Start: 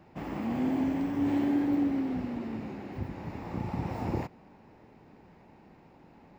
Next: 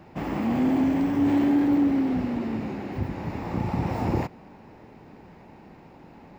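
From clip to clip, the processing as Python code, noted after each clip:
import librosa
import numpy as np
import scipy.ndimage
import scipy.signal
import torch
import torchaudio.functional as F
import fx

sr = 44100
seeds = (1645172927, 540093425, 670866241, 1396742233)

y = 10.0 ** (-21.0 / 20.0) * np.tanh(x / 10.0 ** (-21.0 / 20.0))
y = y * 10.0 ** (7.5 / 20.0)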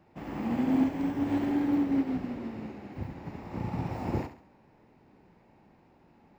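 y = fx.echo_feedback(x, sr, ms=69, feedback_pct=39, wet_db=-6.5)
y = fx.upward_expand(y, sr, threshold_db=-35.0, expansion=1.5)
y = y * 10.0 ** (-4.0 / 20.0)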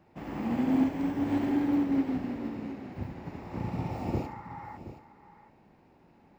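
y = fx.spec_repair(x, sr, seeds[0], start_s=3.74, length_s=1.0, low_hz=800.0, high_hz=2200.0, source='before')
y = y + 10.0 ** (-13.5 / 20.0) * np.pad(y, (int(723 * sr / 1000.0), 0))[:len(y)]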